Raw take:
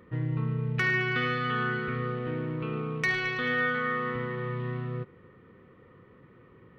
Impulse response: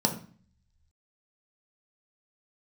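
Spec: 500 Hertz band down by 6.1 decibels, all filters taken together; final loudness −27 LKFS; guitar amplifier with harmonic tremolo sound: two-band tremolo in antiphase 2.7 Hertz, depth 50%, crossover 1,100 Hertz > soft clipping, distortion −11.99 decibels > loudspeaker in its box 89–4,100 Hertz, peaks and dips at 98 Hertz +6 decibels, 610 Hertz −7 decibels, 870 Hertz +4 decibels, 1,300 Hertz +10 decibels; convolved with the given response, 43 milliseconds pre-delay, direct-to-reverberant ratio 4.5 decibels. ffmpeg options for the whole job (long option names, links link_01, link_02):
-filter_complex "[0:a]equalizer=frequency=500:width_type=o:gain=-6.5,asplit=2[link_01][link_02];[1:a]atrim=start_sample=2205,adelay=43[link_03];[link_02][link_03]afir=irnorm=-1:irlink=0,volume=-14.5dB[link_04];[link_01][link_04]amix=inputs=2:normalize=0,acrossover=split=1100[link_05][link_06];[link_05]aeval=exprs='val(0)*(1-0.5/2+0.5/2*cos(2*PI*2.7*n/s))':channel_layout=same[link_07];[link_06]aeval=exprs='val(0)*(1-0.5/2-0.5/2*cos(2*PI*2.7*n/s))':channel_layout=same[link_08];[link_07][link_08]amix=inputs=2:normalize=0,asoftclip=threshold=-29dB,highpass=89,equalizer=frequency=98:width_type=q:width=4:gain=6,equalizer=frequency=610:width_type=q:width=4:gain=-7,equalizer=frequency=870:width_type=q:width=4:gain=4,equalizer=frequency=1300:width_type=q:width=4:gain=10,lowpass=frequency=4100:width=0.5412,lowpass=frequency=4100:width=1.3066,volume=3.5dB"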